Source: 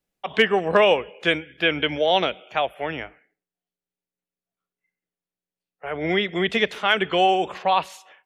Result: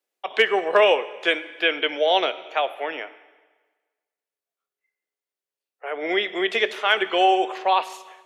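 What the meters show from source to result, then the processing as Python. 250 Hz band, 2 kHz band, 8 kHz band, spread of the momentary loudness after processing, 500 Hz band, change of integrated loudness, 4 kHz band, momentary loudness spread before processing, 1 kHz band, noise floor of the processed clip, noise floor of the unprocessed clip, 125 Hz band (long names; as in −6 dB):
−4.0 dB, +0.5 dB, can't be measured, 12 LU, 0.0 dB, 0.0 dB, 0.0 dB, 12 LU, +0.5 dB, below −85 dBFS, below −85 dBFS, below −20 dB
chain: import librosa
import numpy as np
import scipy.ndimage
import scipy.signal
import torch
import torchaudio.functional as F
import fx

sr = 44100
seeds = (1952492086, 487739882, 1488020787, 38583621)

y = scipy.signal.sosfilt(scipy.signal.butter(4, 340.0, 'highpass', fs=sr, output='sos'), x)
y = fx.rev_fdn(y, sr, rt60_s=1.4, lf_ratio=0.9, hf_ratio=0.9, size_ms=47.0, drr_db=12.5)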